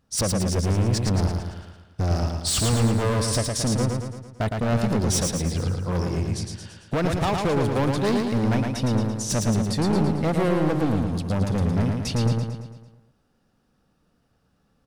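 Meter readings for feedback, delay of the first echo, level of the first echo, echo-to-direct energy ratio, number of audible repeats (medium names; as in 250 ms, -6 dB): 53%, 112 ms, -4.0 dB, -2.5 dB, 6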